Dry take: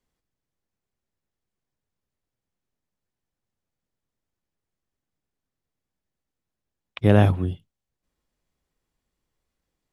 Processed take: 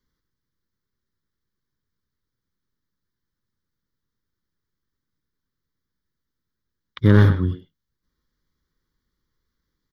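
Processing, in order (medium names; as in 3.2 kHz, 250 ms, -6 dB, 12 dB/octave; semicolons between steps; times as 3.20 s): one-sided wavefolder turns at -16 dBFS; static phaser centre 2.6 kHz, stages 6; speakerphone echo 100 ms, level -8 dB; trim +4.5 dB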